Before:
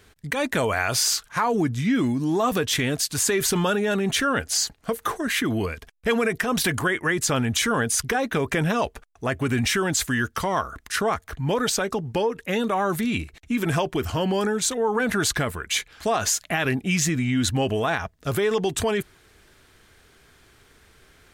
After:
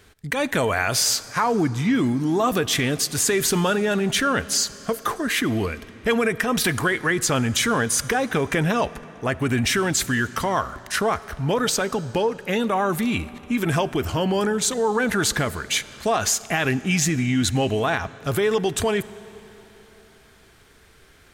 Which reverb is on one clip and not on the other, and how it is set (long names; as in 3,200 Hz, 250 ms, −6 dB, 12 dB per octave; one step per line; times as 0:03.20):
comb and all-pass reverb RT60 3.8 s, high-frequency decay 0.85×, pre-delay 10 ms, DRR 17 dB
level +1.5 dB